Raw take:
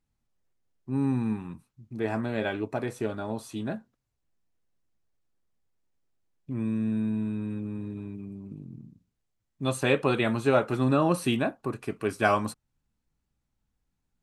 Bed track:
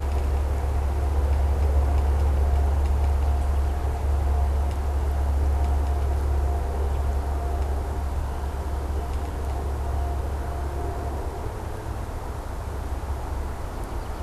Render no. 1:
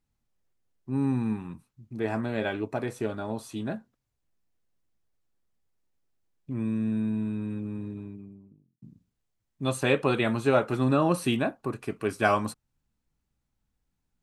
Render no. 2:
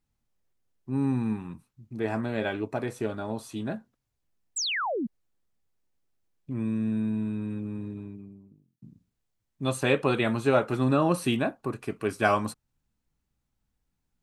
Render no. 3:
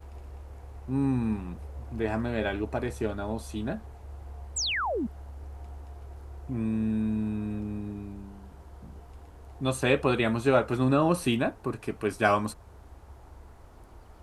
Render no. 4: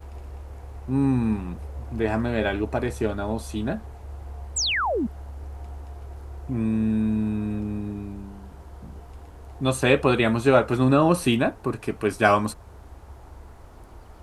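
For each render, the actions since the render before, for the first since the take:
7.74–8.82 studio fade out
4.56–5.07 painted sound fall 200–8300 Hz -29 dBFS
add bed track -19.5 dB
gain +5 dB

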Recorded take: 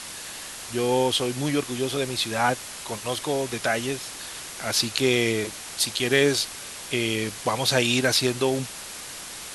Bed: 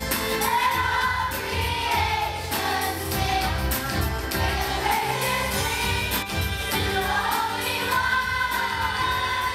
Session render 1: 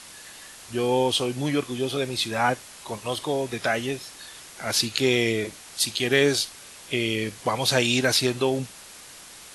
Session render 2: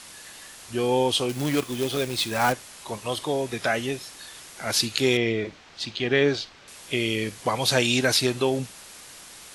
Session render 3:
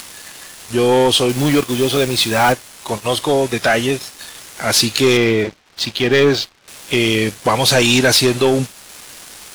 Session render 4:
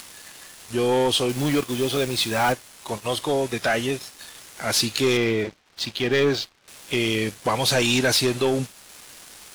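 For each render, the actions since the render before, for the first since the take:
noise print and reduce 7 dB
1.29–2.53 companded quantiser 4-bit; 5.17–6.68 air absorption 180 m
sample leveller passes 3; upward compressor, threshold -28 dBFS
gain -7.5 dB

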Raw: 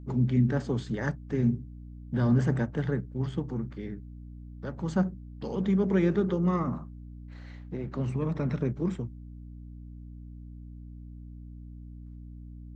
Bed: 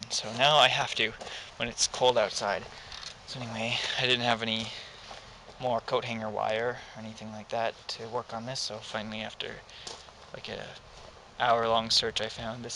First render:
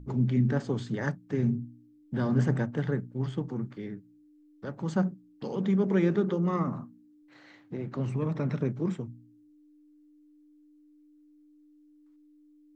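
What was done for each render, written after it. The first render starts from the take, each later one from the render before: de-hum 60 Hz, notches 4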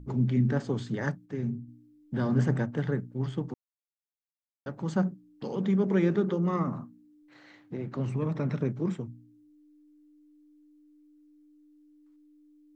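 1.26–1.68 gain -5 dB; 3.54–4.66 mute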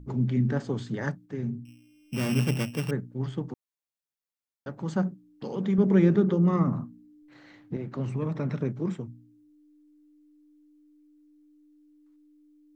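1.65–2.91 sample sorter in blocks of 16 samples; 5.78–7.77 low shelf 260 Hz +9 dB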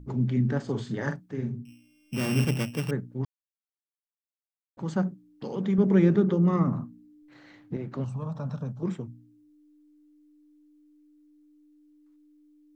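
0.63–2.45 doubler 45 ms -7 dB; 3.25–4.77 mute; 8.04–8.83 fixed phaser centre 860 Hz, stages 4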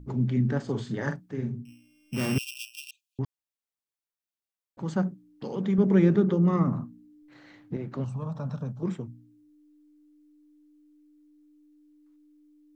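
2.38–3.19 brick-wall FIR high-pass 2400 Hz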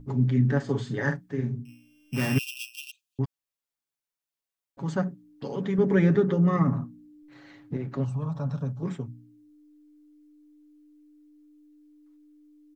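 dynamic EQ 1800 Hz, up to +7 dB, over -55 dBFS, Q 3.9; comb 7.2 ms, depth 55%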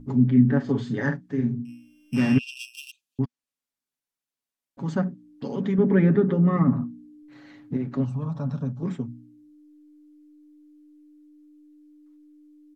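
treble ducked by the level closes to 2600 Hz, closed at -18.5 dBFS; bell 240 Hz +9.5 dB 0.46 oct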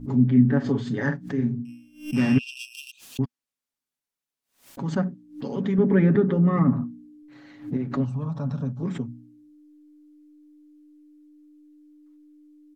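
backwards sustainer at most 150 dB/s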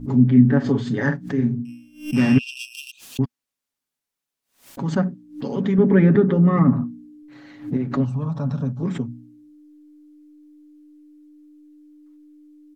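gain +4 dB

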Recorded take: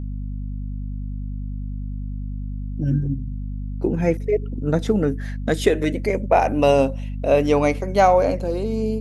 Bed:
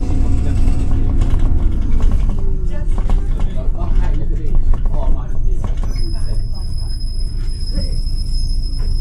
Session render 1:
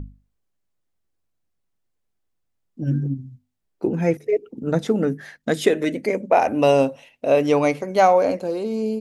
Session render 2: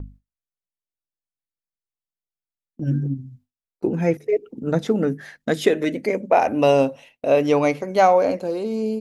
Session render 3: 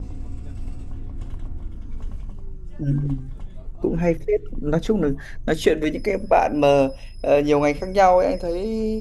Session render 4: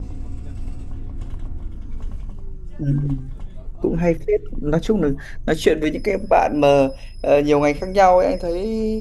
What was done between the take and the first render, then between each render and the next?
notches 50/100/150/200/250 Hz
gate with hold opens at -35 dBFS; dynamic EQ 8700 Hz, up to -5 dB, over -54 dBFS, Q 2.2
add bed -17.5 dB
gain +2 dB; limiter -3 dBFS, peak gain reduction 1 dB

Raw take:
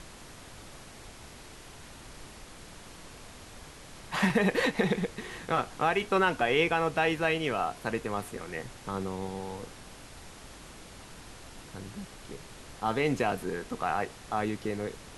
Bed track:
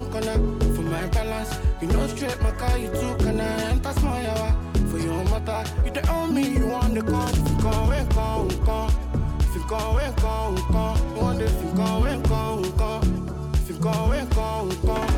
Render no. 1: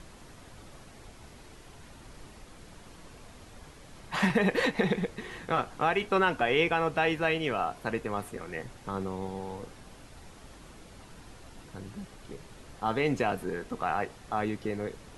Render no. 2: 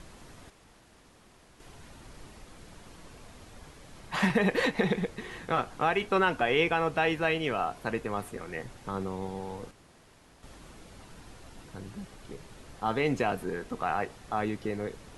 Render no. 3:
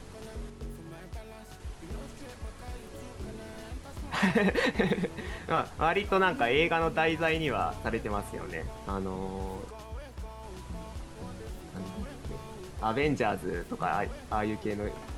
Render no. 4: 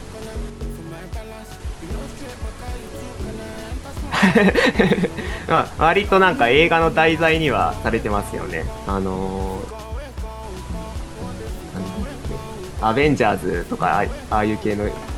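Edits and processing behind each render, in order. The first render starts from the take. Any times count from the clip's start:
denoiser 6 dB, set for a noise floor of -49 dBFS
0.5–1.6 room tone; 9.71–10.43 room tone
add bed track -19.5 dB
gain +11.5 dB; limiter -1 dBFS, peak gain reduction 1 dB

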